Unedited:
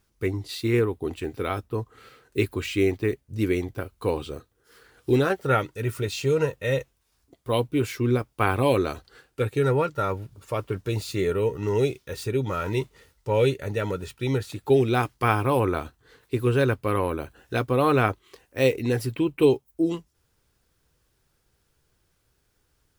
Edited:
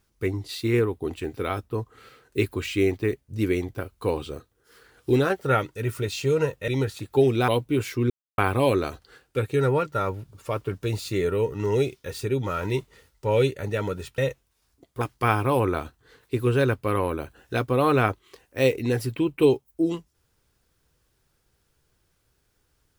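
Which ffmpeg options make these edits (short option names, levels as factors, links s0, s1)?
-filter_complex "[0:a]asplit=7[s0][s1][s2][s3][s4][s5][s6];[s0]atrim=end=6.682[s7];[s1]atrim=start=14.208:end=15.012[s8];[s2]atrim=start=7.508:end=8.13,asetpts=PTS-STARTPTS,afade=t=out:st=0.618:d=0.004:c=hsin[s9];[s3]atrim=start=8.13:end=8.41,asetpts=PTS-STARTPTS,volume=0[s10];[s4]atrim=start=8.41:end=14.212,asetpts=PTS-STARTPTS,afade=t=in:d=0.004:c=hsin[s11];[s5]atrim=start=6.678:end=7.512[s12];[s6]atrim=start=15.008[s13];[s7][s8]acrossfade=d=0.004:c1=hsin:c2=hsin[s14];[s9][s10][s11]concat=n=3:v=0:a=1[s15];[s14][s15]acrossfade=d=0.004:c1=hsin:c2=hsin[s16];[s16][s12]acrossfade=d=0.004:c1=hsin:c2=hsin[s17];[s17][s13]acrossfade=d=0.004:c1=hsin:c2=hsin"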